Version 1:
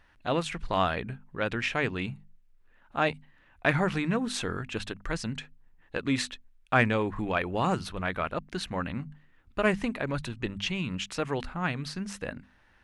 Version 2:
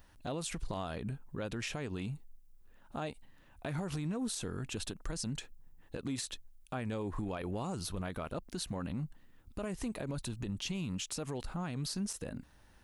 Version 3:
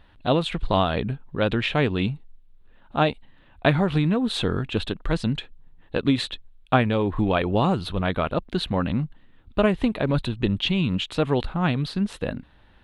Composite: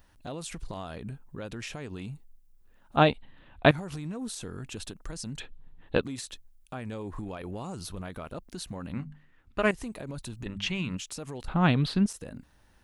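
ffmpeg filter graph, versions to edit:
-filter_complex "[2:a]asplit=3[a][b][c];[0:a]asplit=2[d][e];[1:a]asplit=6[f][g][h][i][j][k];[f]atrim=end=2.962[l];[a]atrim=start=2.958:end=3.712[m];[g]atrim=start=3.708:end=5.402[n];[b]atrim=start=5.398:end=6.032[o];[h]atrim=start=6.028:end=8.932[p];[d]atrim=start=8.928:end=9.712[q];[i]atrim=start=9.708:end=10.462[r];[e]atrim=start=10.458:end=10.972[s];[j]atrim=start=10.968:end=11.482[t];[c]atrim=start=11.478:end=12.062[u];[k]atrim=start=12.058[v];[l][m]acrossfade=d=0.004:c1=hsin:c2=hsin[w];[w][n]acrossfade=d=0.004:c1=hsin:c2=hsin[x];[x][o]acrossfade=d=0.004:c1=hsin:c2=hsin[y];[y][p]acrossfade=d=0.004:c1=hsin:c2=hsin[z];[z][q]acrossfade=d=0.004:c1=hsin:c2=hsin[aa];[aa][r]acrossfade=d=0.004:c1=hsin:c2=hsin[ab];[ab][s]acrossfade=d=0.004:c1=hsin:c2=hsin[ac];[ac][t]acrossfade=d=0.004:c1=hsin:c2=hsin[ad];[ad][u]acrossfade=d=0.004:c1=hsin:c2=hsin[ae];[ae][v]acrossfade=d=0.004:c1=hsin:c2=hsin"

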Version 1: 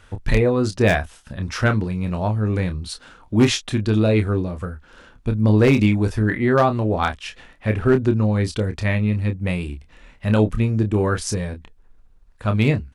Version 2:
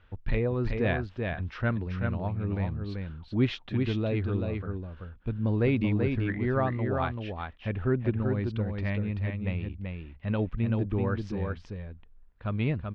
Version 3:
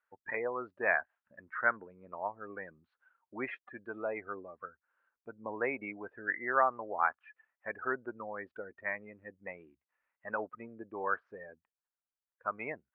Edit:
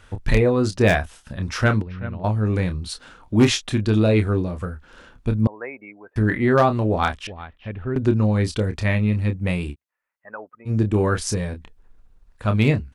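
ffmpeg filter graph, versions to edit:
-filter_complex "[1:a]asplit=2[a][b];[2:a]asplit=2[c][d];[0:a]asplit=5[e][f][g][h][i];[e]atrim=end=1.822[j];[a]atrim=start=1.818:end=2.242[k];[f]atrim=start=2.238:end=5.472[l];[c]atrim=start=5.468:end=6.162[m];[g]atrim=start=6.158:end=7.272[n];[b]atrim=start=7.268:end=7.962[o];[h]atrim=start=7.958:end=9.76[p];[d]atrim=start=9.7:end=10.71[q];[i]atrim=start=10.65[r];[j][k]acrossfade=d=0.004:c1=hsin:c2=hsin[s];[s][l]acrossfade=d=0.004:c1=hsin:c2=hsin[t];[t][m]acrossfade=d=0.004:c1=hsin:c2=hsin[u];[u][n]acrossfade=d=0.004:c1=hsin:c2=hsin[v];[v][o]acrossfade=d=0.004:c1=hsin:c2=hsin[w];[w][p]acrossfade=d=0.004:c1=hsin:c2=hsin[x];[x][q]acrossfade=d=0.06:c1=tri:c2=tri[y];[y][r]acrossfade=d=0.06:c1=tri:c2=tri"

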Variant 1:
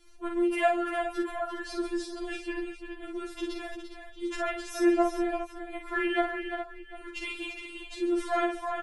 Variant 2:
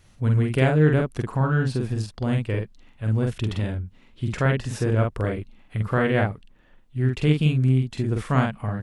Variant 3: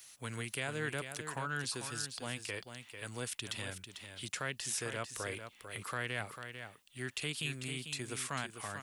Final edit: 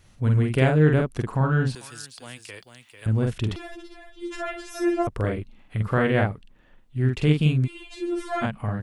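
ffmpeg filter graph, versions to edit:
-filter_complex "[0:a]asplit=2[a][b];[1:a]asplit=4[c][d][e][f];[c]atrim=end=1.752[g];[2:a]atrim=start=1.748:end=3.062[h];[d]atrim=start=3.058:end=3.562[i];[a]atrim=start=3.558:end=5.072[j];[e]atrim=start=5.068:end=7.68[k];[b]atrim=start=7.64:end=8.45[l];[f]atrim=start=8.41[m];[g][h]acrossfade=d=0.004:c1=hsin:c2=hsin[n];[n][i]acrossfade=d=0.004:c1=hsin:c2=hsin[o];[o][j]acrossfade=d=0.004:c1=hsin:c2=hsin[p];[p][k]acrossfade=d=0.004:c1=hsin:c2=hsin[q];[q][l]acrossfade=d=0.04:c1=tri:c2=tri[r];[r][m]acrossfade=d=0.04:c1=tri:c2=tri"

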